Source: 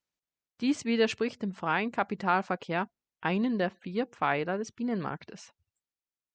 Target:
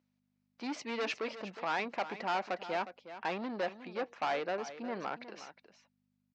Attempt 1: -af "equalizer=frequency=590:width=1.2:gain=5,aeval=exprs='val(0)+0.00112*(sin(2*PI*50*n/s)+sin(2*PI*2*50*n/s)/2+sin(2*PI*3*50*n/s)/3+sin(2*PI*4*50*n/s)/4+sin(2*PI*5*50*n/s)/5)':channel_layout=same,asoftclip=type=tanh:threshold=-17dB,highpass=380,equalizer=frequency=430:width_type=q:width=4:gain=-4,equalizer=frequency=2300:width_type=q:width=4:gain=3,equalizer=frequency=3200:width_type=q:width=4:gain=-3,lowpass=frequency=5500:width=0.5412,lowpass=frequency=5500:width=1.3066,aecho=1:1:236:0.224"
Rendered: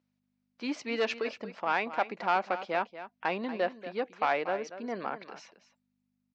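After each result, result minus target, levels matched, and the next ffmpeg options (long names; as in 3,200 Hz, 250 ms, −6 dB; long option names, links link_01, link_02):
echo 125 ms early; soft clipping: distortion −10 dB
-af "equalizer=frequency=590:width=1.2:gain=5,aeval=exprs='val(0)+0.00112*(sin(2*PI*50*n/s)+sin(2*PI*2*50*n/s)/2+sin(2*PI*3*50*n/s)/3+sin(2*PI*4*50*n/s)/4+sin(2*PI*5*50*n/s)/5)':channel_layout=same,asoftclip=type=tanh:threshold=-17dB,highpass=380,equalizer=frequency=430:width_type=q:width=4:gain=-4,equalizer=frequency=2300:width_type=q:width=4:gain=3,equalizer=frequency=3200:width_type=q:width=4:gain=-3,lowpass=frequency=5500:width=0.5412,lowpass=frequency=5500:width=1.3066,aecho=1:1:361:0.224"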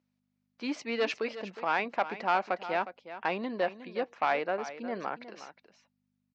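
soft clipping: distortion −10 dB
-af "equalizer=frequency=590:width=1.2:gain=5,aeval=exprs='val(0)+0.00112*(sin(2*PI*50*n/s)+sin(2*PI*2*50*n/s)/2+sin(2*PI*3*50*n/s)/3+sin(2*PI*4*50*n/s)/4+sin(2*PI*5*50*n/s)/5)':channel_layout=same,asoftclip=type=tanh:threshold=-27.5dB,highpass=380,equalizer=frequency=430:width_type=q:width=4:gain=-4,equalizer=frequency=2300:width_type=q:width=4:gain=3,equalizer=frequency=3200:width_type=q:width=4:gain=-3,lowpass=frequency=5500:width=0.5412,lowpass=frequency=5500:width=1.3066,aecho=1:1:361:0.224"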